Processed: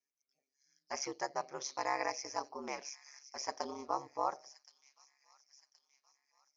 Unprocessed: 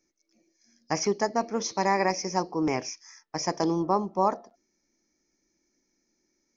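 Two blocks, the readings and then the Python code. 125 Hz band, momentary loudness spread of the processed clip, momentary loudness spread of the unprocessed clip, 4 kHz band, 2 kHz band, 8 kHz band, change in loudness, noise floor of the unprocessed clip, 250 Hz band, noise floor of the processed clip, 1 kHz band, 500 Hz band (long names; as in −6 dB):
−25.5 dB, 12 LU, 10 LU, −9.0 dB, −9.0 dB, can't be measured, −12.0 dB, −77 dBFS, −20.0 dB, below −85 dBFS, −10.0 dB, −13.5 dB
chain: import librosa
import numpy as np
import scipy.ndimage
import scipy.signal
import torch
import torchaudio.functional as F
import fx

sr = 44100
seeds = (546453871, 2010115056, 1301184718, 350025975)

y = fx.noise_reduce_blind(x, sr, reduce_db=9)
y = scipy.signal.sosfilt(scipy.signal.butter(2, 590.0, 'highpass', fs=sr, output='sos'), y)
y = fx.echo_wet_highpass(y, sr, ms=1072, feedback_pct=46, hz=3200.0, wet_db=-13.0)
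y = y * np.sin(2.0 * np.pi * 69.0 * np.arange(len(y)) / sr)
y = y * 10.0 ** (-6.0 / 20.0)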